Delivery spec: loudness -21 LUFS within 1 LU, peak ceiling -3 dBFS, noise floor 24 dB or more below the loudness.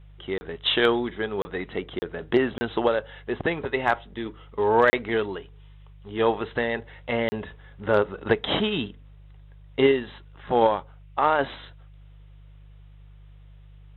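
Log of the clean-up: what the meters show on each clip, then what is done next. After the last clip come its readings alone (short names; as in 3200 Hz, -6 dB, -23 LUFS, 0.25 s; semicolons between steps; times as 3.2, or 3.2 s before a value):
dropouts 6; longest dropout 30 ms; hum 50 Hz; harmonics up to 150 Hz; hum level -45 dBFS; loudness -25.5 LUFS; peak -7.0 dBFS; loudness target -21.0 LUFS
-> interpolate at 0.38/1.42/1.99/2.58/4.9/7.29, 30 ms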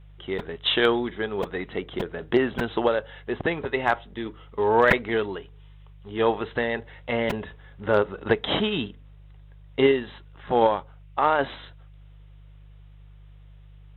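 dropouts 0; hum 50 Hz; harmonics up to 150 Hz; hum level -45 dBFS
-> de-hum 50 Hz, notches 3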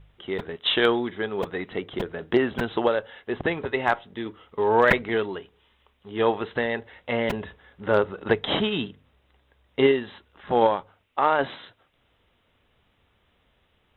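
hum none; loudness -25.5 LUFS; peak -4.5 dBFS; loudness target -21.0 LUFS
-> gain +4.5 dB; limiter -3 dBFS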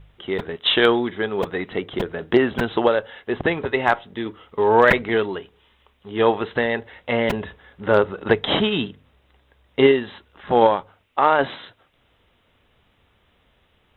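loudness -21.0 LUFS; peak -3.0 dBFS; noise floor -63 dBFS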